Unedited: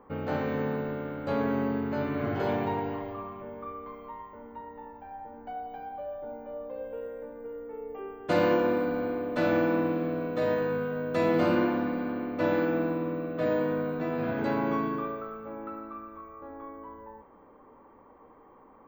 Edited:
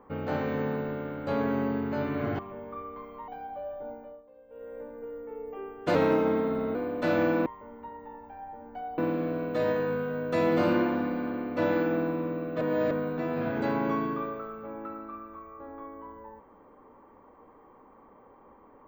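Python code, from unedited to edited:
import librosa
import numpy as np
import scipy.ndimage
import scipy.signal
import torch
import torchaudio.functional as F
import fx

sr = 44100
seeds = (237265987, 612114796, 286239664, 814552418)

y = fx.edit(x, sr, fx.cut(start_s=2.39, length_s=0.9),
    fx.move(start_s=4.18, length_s=1.52, to_s=9.8),
    fx.fade_down_up(start_s=6.33, length_s=0.89, db=-17.0, fade_s=0.32),
    fx.speed_span(start_s=8.37, length_s=0.72, speed=0.9),
    fx.reverse_span(start_s=13.43, length_s=0.3), tone=tone)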